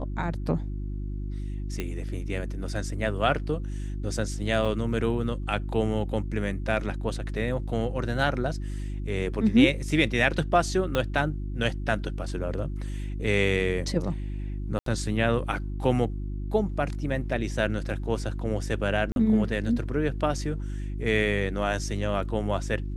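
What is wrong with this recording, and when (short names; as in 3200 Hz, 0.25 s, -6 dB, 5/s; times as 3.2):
hum 50 Hz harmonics 7 -32 dBFS
1.8 pop -16 dBFS
4.65–4.66 gap 5.9 ms
10.95 pop -12 dBFS
14.79–14.86 gap 73 ms
19.12–19.16 gap 41 ms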